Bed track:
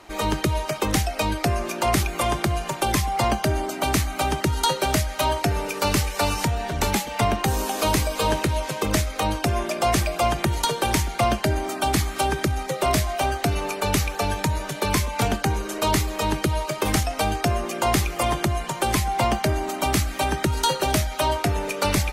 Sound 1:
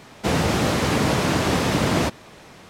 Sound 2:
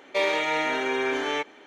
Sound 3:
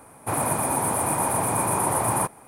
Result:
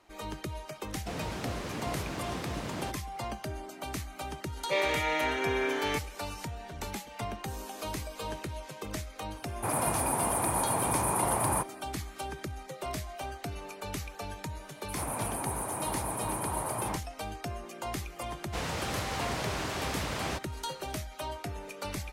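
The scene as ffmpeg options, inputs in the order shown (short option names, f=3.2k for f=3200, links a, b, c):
-filter_complex "[1:a]asplit=2[a][b];[3:a]asplit=2[c][d];[0:a]volume=-15.5dB[e];[d]acrossover=split=4100[f][g];[f]adelay=80[h];[h][g]amix=inputs=2:normalize=0[i];[b]equalizer=f=230:w=0.61:g=-9[j];[a]atrim=end=2.69,asetpts=PTS-STARTPTS,volume=-17dB,afade=t=in:d=0.004:c=hsin,afade=t=out:st=2.686:d=0.004:c=hsin,adelay=820[k];[2:a]atrim=end=1.66,asetpts=PTS-STARTPTS,volume=-4.5dB,afade=t=in:d=0.004:c=hsin,afade=t=out:st=1.656:d=0.004:c=hsin,adelay=4560[l];[c]atrim=end=2.47,asetpts=PTS-STARTPTS,volume=-5.5dB,afade=t=in:d=0.004:c=hsin,afade=t=out:st=2.466:d=0.004:c=hsin,adelay=9360[m];[i]atrim=end=2.47,asetpts=PTS-STARTPTS,volume=-11dB,afade=t=in:d=0.004:c=hsin,afade=t=out:st=2.466:d=0.004:c=hsin,adelay=14620[n];[j]atrim=end=2.69,asetpts=PTS-STARTPTS,volume=-10.5dB,afade=t=in:d=0.004:c=hsin,afade=t=out:st=2.686:d=0.004:c=hsin,adelay=18290[o];[e][k][l][m][n][o]amix=inputs=6:normalize=0"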